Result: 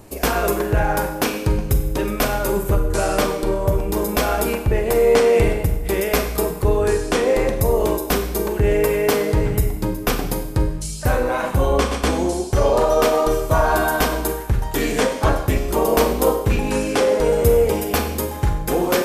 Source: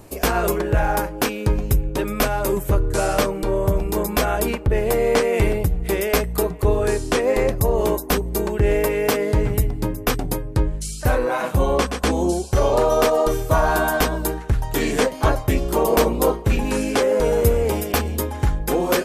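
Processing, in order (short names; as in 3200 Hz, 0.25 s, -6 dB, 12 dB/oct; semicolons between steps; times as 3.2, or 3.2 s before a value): Schroeder reverb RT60 0.85 s, combs from 32 ms, DRR 6 dB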